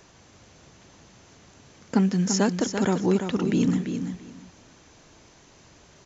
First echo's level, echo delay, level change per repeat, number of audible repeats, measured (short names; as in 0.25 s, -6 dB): -7.5 dB, 0.339 s, -15.0 dB, 2